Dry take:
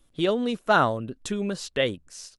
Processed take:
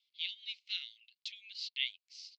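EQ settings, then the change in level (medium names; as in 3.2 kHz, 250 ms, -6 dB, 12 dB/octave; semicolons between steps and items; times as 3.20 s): rippled Chebyshev high-pass 2.1 kHz, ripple 3 dB; resonant low-pass 4.5 kHz, resonance Q 5.2; distance through air 160 m; -4.5 dB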